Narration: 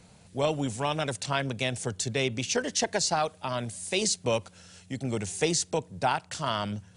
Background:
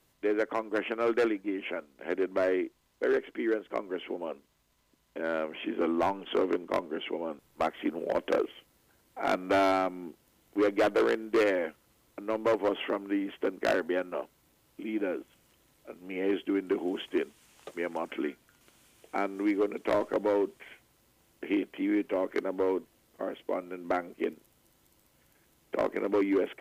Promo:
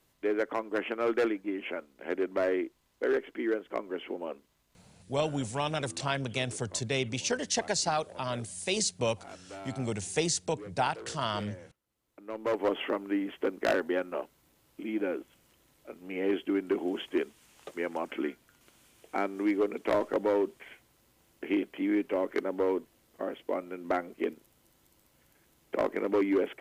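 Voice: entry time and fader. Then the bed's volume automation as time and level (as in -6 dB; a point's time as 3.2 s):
4.75 s, -2.5 dB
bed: 4.85 s -1 dB
5.12 s -19.5 dB
11.83 s -19.5 dB
12.65 s 0 dB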